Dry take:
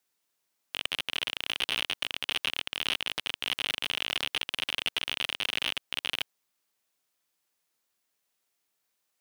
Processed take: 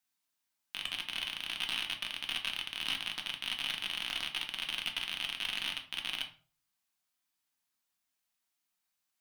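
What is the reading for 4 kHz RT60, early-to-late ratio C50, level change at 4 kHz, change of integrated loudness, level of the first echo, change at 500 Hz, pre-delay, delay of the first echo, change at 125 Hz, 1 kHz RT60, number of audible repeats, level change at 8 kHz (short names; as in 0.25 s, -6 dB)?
0.30 s, 11.0 dB, -4.5 dB, -4.5 dB, none, -12.0 dB, 3 ms, none, -5.0 dB, 0.40 s, none, -5.0 dB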